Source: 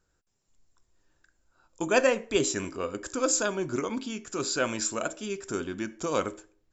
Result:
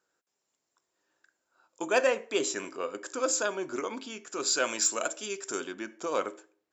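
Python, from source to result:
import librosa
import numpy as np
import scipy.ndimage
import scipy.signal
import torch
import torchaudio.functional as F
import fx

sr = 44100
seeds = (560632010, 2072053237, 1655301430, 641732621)

y = fx.high_shelf(x, sr, hz=4000.0, db=fx.steps((0.0, -3.5), (4.45, 6.5), (5.71, -7.0)))
y = 10.0 ** (-12.5 / 20.0) * np.tanh(y / 10.0 ** (-12.5 / 20.0))
y = scipy.signal.sosfilt(scipy.signal.butter(2, 380.0, 'highpass', fs=sr, output='sos'), y)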